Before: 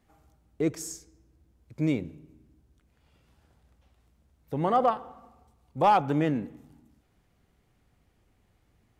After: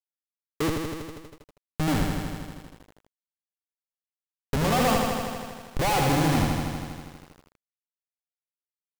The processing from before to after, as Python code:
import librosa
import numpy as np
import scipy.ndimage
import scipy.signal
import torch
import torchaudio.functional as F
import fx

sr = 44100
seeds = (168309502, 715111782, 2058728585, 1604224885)

p1 = fx.dead_time(x, sr, dead_ms=0.063)
p2 = fx.env_lowpass(p1, sr, base_hz=420.0, full_db=-20.5)
p3 = p2 + fx.echo_feedback(p2, sr, ms=63, feedback_pct=59, wet_db=-20, dry=0)
p4 = fx.schmitt(p3, sr, flips_db=-31.5)
p5 = fx.echo_crushed(p4, sr, ms=80, feedback_pct=80, bits=10, wet_db=-4)
y = p5 * librosa.db_to_amplitude(8.0)